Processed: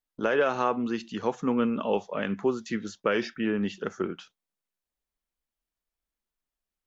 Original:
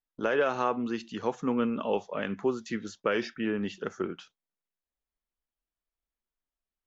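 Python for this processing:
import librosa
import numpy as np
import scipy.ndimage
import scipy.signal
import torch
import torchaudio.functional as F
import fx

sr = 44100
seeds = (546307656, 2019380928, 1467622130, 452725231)

y = fx.peak_eq(x, sr, hz=200.0, db=2.5, octaves=0.25)
y = y * 10.0 ** (2.0 / 20.0)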